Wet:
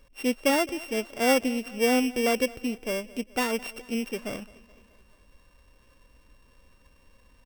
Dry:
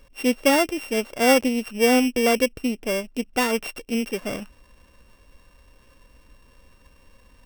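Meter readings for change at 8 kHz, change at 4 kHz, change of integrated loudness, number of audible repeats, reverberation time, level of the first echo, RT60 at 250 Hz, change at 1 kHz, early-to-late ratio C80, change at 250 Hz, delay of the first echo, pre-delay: -5.0 dB, -5.0 dB, -5.0 dB, 3, no reverb, -21.5 dB, no reverb, -5.0 dB, no reverb, -5.0 dB, 213 ms, no reverb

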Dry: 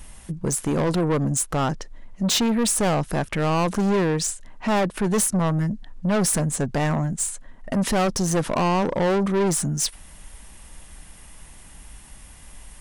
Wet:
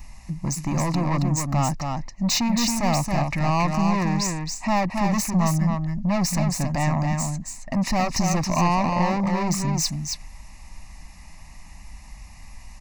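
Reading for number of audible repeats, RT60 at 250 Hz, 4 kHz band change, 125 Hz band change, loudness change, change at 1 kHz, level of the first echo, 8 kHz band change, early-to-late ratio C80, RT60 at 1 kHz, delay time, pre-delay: 1, no reverb, 0.0 dB, +2.0 dB, -0.5 dB, +2.0 dB, -4.5 dB, -3.0 dB, no reverb, no reverb, 274 ms, no reverb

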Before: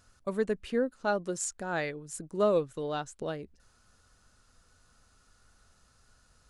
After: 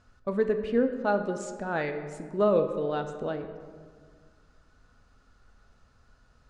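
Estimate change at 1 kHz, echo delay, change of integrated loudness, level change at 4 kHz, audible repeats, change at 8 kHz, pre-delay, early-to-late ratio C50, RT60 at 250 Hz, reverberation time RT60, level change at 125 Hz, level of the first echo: +3.5 dB, no echo, +3.5 dB, -3.0 dB, no echo, under -10 dB, 3 ms, 9.0 dB, 2.2 s, 1.8 s, +3.5 dB, no echo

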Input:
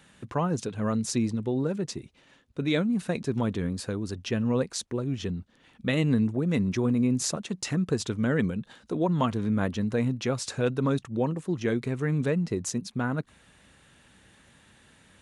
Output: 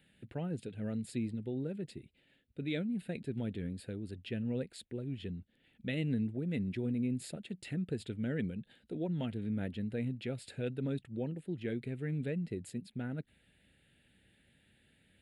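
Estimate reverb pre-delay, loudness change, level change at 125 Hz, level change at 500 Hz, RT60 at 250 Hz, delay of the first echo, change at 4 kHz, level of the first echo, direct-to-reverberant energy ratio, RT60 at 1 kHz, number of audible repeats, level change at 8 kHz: no reverb, -10.0 dB, -9.0 dB, -11.5 dB, no reverb, no echo, -12.5 dB, no echo, no reverb, no reverb, no echo, -19.5 dB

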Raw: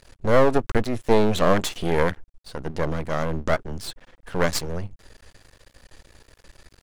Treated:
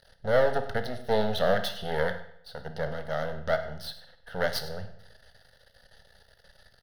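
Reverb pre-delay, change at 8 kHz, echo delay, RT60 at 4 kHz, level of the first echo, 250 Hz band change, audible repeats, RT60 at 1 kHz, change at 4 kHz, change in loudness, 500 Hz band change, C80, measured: 18 ms, -12.5 dB, 100 ms, 0.60 s, -17.5 dB, -11.5 dB, 1, 0.70 s, -3.0 dB, -6.0 dB, -5.0 dB, 13.0 dB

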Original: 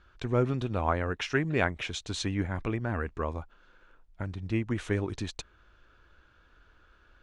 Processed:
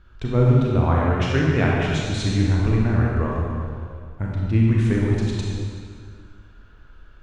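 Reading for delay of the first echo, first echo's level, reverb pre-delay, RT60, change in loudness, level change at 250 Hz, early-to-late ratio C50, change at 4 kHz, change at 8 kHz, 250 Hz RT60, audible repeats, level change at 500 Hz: no echo, no echo, 28 ms, 2.1 s, +10.5 dB, +11.0 dB, -2.0 dB, +5.5 dB, +4.5 dB, 2.2 s, no echo, +7.5 dB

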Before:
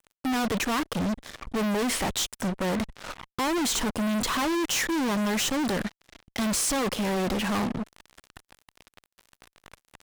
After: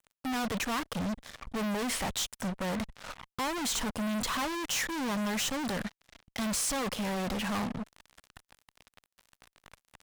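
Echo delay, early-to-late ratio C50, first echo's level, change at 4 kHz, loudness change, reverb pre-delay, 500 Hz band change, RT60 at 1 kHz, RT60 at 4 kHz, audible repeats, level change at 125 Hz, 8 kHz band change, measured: no echo, no reverb, no echo, -4.5 dB, -5.5 dB, no reverb, -7.0 dB, no reverb, no reverb, no echo, -5.0 dB, -4.5 dB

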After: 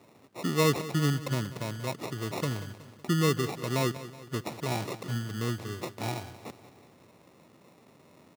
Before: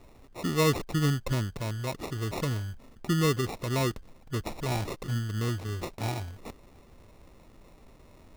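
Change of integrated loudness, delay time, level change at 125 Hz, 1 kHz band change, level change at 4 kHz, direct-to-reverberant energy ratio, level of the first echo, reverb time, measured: -0.5 dB, 186 ms, -2.0 dB, 0.0 dB, 0.0 dB, no reverb, -15.0 dB, no reverb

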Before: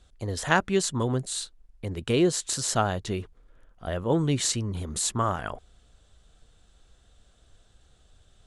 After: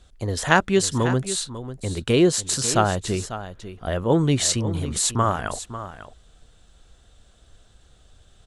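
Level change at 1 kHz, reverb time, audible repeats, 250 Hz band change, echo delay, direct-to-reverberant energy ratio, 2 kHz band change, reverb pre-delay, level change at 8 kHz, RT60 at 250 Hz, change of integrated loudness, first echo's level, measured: +5.0 dB, no reverb, 1, +5.0 dB, 546 ms, no reverb, +5.0 dB, no reverb, +5.0 dB, no reverb, +5.0 dB, -12.5 dB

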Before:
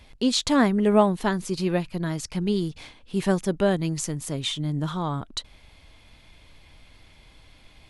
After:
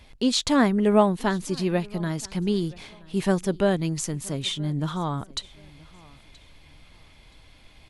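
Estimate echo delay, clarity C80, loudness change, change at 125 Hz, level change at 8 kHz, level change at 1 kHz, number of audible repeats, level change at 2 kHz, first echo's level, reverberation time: 975 ms, no reverb, 0.0 dB, 0.0 dB, 0.0 dB, 0.0 dB, 1, 0.0 dB, -24.0 dB, no reverb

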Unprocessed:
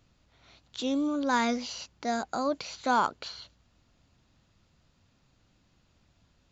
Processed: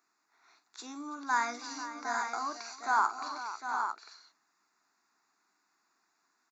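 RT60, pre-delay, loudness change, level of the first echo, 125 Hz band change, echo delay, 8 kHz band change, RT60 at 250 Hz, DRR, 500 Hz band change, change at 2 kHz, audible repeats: no reverb, no reverb, -3.5 dB, -11.0 dB, under -20 dB, 46 ms, no reading, no reverb, no reverb, -12.5 dB, +0.5 dB, 6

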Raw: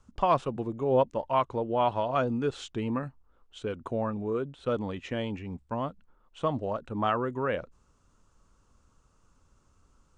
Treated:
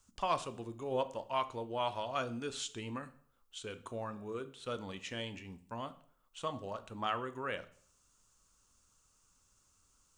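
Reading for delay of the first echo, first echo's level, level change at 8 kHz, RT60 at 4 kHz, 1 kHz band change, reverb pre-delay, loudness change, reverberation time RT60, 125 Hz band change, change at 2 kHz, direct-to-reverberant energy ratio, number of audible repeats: no echo, no echo, no reading, 0.50 s, -8.0 dB, 6 ms, -9.0 dB, 0.55 s, -12.0 dB, -4.0 dB, 11.0 dB, no echo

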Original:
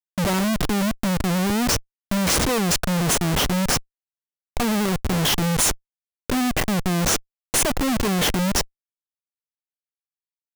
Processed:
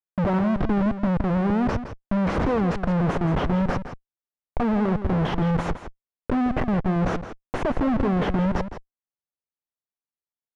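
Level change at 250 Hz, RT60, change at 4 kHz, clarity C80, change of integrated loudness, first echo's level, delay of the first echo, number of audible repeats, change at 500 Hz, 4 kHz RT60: +0.5 dB, no reverb, -17.5 dB, no reverb, -2.5 dB, -11.0 dB, 165 ms, 1, 0.0 dB, no reverb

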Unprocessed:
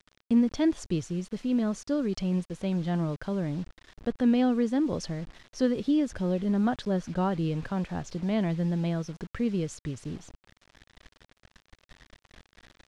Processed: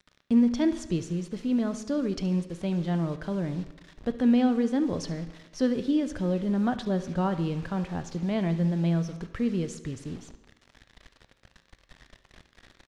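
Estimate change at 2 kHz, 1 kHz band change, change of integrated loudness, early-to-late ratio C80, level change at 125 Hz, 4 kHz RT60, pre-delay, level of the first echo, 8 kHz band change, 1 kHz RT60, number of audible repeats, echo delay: +0.5 dB, +0.5 dB, +1.0 dB, 14.5 dB, +1.5 dB, 1.0 s, 9 ms, -17.5 dB, 0.0 dB, 1.1 s, 1, 71 ms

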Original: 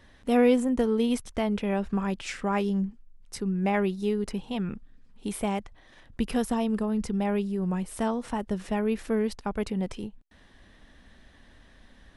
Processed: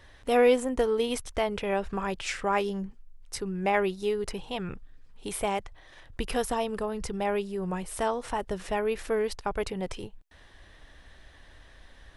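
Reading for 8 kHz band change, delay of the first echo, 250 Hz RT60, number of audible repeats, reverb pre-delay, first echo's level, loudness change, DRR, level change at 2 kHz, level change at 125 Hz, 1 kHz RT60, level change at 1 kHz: +3.0 dB, no echo, no reverb, no echo, no reverb, no echo, -1.5 dB, no reverb, +3.0 dB, -6.0 dB, no reverb, +2.5 dB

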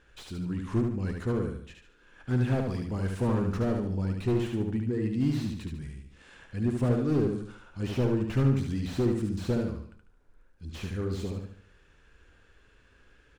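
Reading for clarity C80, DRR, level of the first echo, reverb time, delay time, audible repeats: no reverb, no reverb, -4.0 dB, no reverb, 73 ms, 4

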